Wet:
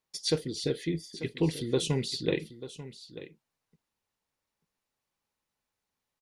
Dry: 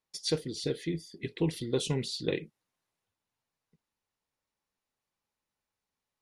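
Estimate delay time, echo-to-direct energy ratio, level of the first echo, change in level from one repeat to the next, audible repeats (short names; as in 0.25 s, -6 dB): 0.89 s, -14.5 dB, -14.5 dB, no steady repeat, 1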